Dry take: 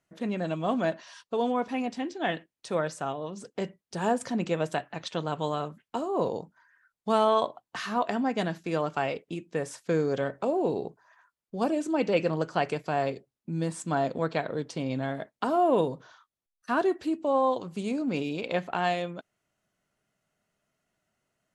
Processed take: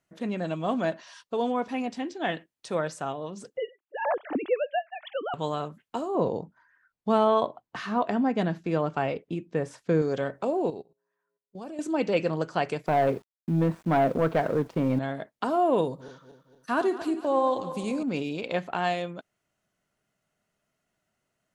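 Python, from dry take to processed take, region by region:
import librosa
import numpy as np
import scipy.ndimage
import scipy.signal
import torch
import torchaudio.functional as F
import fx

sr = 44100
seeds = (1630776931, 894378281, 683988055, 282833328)

y = fx.chain(x, sr, fx.sine_speech(),
    fx.band_squash(depth_pct=40), at=(3.57, 5.34))
y = fx.chain(y, sr, fx.lowpass(hz=3000.0, slope=6),
    fx.low_shelf(hz=370.0, db=5.5), at=(6.15, 10.02))
y = fx.chain(y, sr, fx.comb_fb(f0_hz=59.0, decay_s=1.4, harmonics='odd', damping=0.0, mix_pct=40),
    fx.level_steps(step_db=19),
    fx.upward_expand(threshold_db=-49.0, expansion=1.5), at=(10.7, 11.79))
y = fx.chain(y, sr, fx.lowpass(hz=1600.0, slope=12),
    fx.leveller(passes=2),
    fx.quant_dither(seeds[0], bits=10, dither='none'), at=(12.86, 14.99))
y = fx.chain(y, sr, fx.reverse_delay_fb(ms=117, feedback_pct=66, wet_db=-12),
    fx.high_shelf(hz=9300.0, db=9.0), at=(15.85, 18.03))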